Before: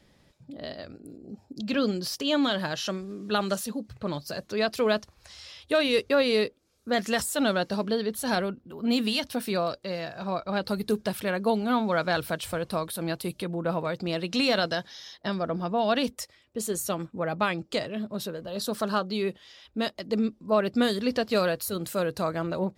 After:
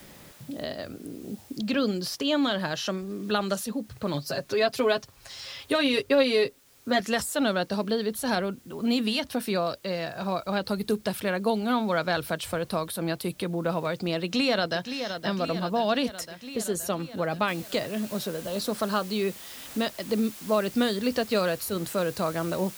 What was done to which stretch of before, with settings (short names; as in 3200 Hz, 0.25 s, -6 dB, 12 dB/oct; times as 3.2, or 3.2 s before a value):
4.13–7 comb 7.4 ms, depth 77%
14.21–14.93 echo throw 0.52 s, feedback 70%, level -11 dB
17.48 noise floor step -62 dB -47 dB
whole clip: three-band squash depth 40%